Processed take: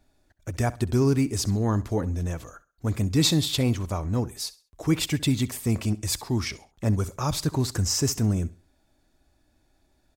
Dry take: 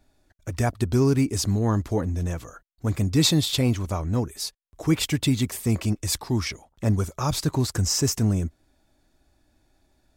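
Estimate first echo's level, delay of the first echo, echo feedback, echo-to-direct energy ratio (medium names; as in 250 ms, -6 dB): -19.0 dB, 66 ms, 31%, -18.5 dB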